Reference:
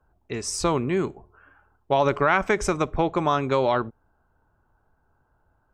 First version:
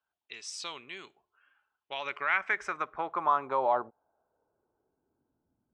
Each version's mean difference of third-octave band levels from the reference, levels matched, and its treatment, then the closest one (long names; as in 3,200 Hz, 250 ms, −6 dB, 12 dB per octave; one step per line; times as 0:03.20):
8.0 dB: band-pass filter sweep 3,300 Hz → 220 Hz, 0:01.65–0:05.65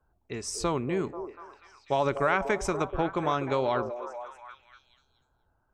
2.5 dB: echo through a band-pass that steps 243 ms, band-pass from 480 Hz, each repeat 0.7 octaves, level −7 dB
level −5.5 dB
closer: second